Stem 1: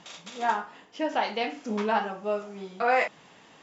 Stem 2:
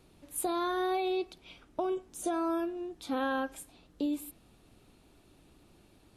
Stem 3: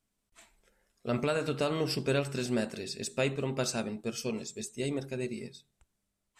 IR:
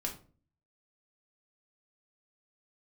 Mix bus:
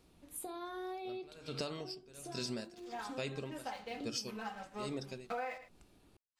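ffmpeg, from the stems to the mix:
-filter_complex "[0:a]aecho=1:1:3.9:0.87,aeval=exprs='sgn(val(0))*max(abs(val(0))-0.01,0)':c=same,adelay=2500,volume=-8.5dB,afade=t=in:st=4.53:d=0.21:silence=0.398107,asplit=2[a][b];[b]volume=-18dB[c];[1:a]acompressor=threshold=-37dB:ratio=5,volume=-8.5dB,asplit=2[d][e];[e]volume=-4.5dB[f];[2:a]equalizer=f=4.9k:w=2:g=13,aeval=exprs='val(0)*pow(10,-33*(0.5-0.5*cos(2*PI*1.2*n/s))/20)':c=same,volume=0dB,asplit=2[g][h];[h]apad=whole_len=271957[i];[d][i]sidechaincompress=threshold=-39dB:ratio=8:attack=16:release=1140[j];[3:a]atrim=start_sample=2205[k];[f][k]afir=irnorm=-1:irlink=0[l];[c]aecho=0:1:110:1[m];[a][j][g][l][m]amix=inputs=5:normalize=0,acompressor=threshold=-36dB:ratio=12"

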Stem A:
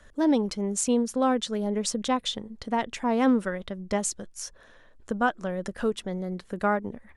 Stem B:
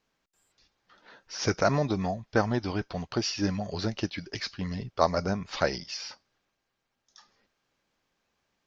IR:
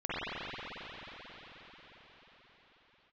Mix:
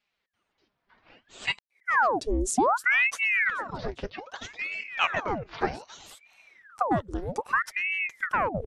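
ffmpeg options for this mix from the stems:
-filter_complex "[0:a]equalizer=f=250:t=o:w=1:g=12,equalizer=f=500:t=o:w=1:g=-10,equalizer=f=1k:t=o:w=1:g=-3,equalizer=f=2k:t=o:w=1:g=-9,acompressor=threshold=-18dB:ratio=6,adelay=1700,volume=1dB[a];[1:a]lowpass=2.8k,aecho=1:1:4.9:0.92,volume=-1.5dB,asplit=3[b][c][d];[b]atrim=end=1.59,asetpts=PTS-STARTPTS,afade=t=out:st=1.586:d=0.004:c=hsin[e];[c]atrim=start=1.59:end=3.49,asetpts=PTS-STARTPTS,volume=0[f];[d]atrim=start=3.49,asetpts=PTS-STARTPTS,afade=t=in:d=0.004:c=hsin[g];[e][f][g]concat=n=3:v=0:a=1,asplit=2[h][i];[i]apad=whole_len=390955[j];[a][j]sidechaincompress=threshold=-57dB:ratio=16:attack=30:release=192[k];[k][h]amix=inputs=2:normalize=0,aeval=exprs='val(0)*sin(2*PI*1300*n/s+1300*0.9/0.63*sin(2*PI*0.63*n/s))':c=same"

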